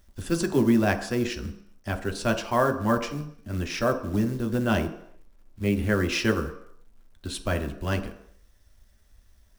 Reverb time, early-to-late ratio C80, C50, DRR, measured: no single decay rate, 13.5 dB, 11.5 dB, 5.0 dB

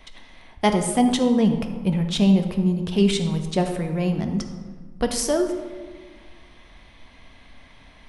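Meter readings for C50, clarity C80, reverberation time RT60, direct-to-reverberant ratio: 7.5 dB, 9.0 dB, 1.6 s, 5.0 dB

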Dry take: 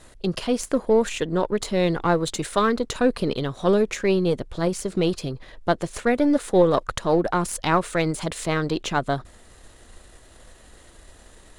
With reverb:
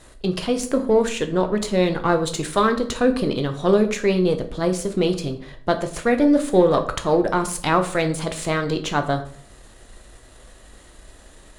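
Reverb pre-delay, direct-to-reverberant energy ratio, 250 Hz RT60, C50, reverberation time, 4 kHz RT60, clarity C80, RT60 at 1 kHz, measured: 9 ms, 6.0 dB, 0.65 s, 12.0 dB, 0.55 s, 0.40 s, 16.0 dB, 0.50 s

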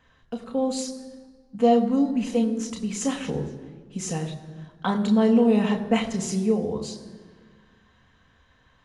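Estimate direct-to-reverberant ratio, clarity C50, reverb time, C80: 2.5 dB, 11.0 dB, 1.6 s, 12.0 dB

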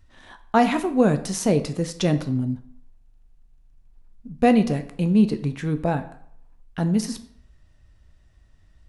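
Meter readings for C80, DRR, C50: 16.5 dB, 9.0 dB, 13.5 dB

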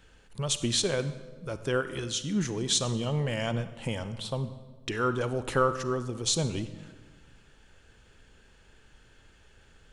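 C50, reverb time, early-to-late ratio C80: 12.0 dB, 1.4 s, 13.5 dB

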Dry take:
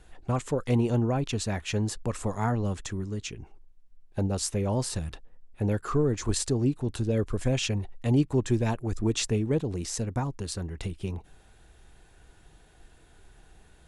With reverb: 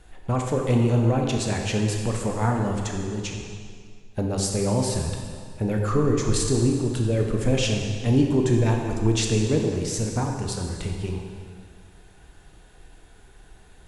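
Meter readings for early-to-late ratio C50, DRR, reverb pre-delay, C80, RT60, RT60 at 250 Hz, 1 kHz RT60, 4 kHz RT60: 2.5 dB, 1.0 dB, 20 ms, 4.0 dB, 2.1 s, 2.0 s, 2.1 s, 1.8 s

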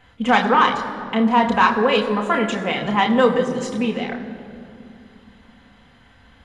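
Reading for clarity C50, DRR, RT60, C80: 9.0 dB, 1.5 dB, 2.5 s, 9.5 dB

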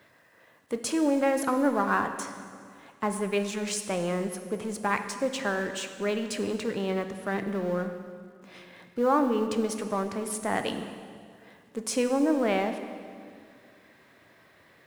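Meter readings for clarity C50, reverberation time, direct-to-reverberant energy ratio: 8.5 dB, 2.2 s, 7.0 dB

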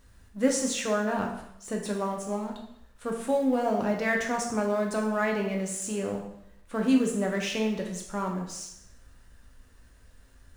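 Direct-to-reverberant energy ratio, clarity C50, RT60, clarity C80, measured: 0.5 dB, 5.5 dB, 0.75 s, 8.5 dB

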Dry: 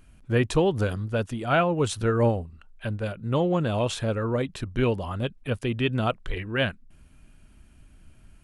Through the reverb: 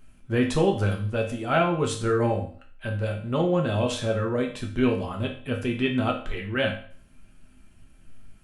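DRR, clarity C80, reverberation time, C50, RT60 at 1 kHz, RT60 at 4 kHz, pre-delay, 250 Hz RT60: 0.0 dB, 12.5 dB, 0.45 s, 8.0 dB, 0.50 s, 0.45 s, 4 ms, 0.45 s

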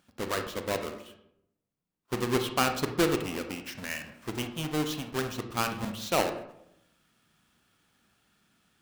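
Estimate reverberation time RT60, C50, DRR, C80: 0.80 s, 8.5 dB, 6.0 dB, 12.0 dB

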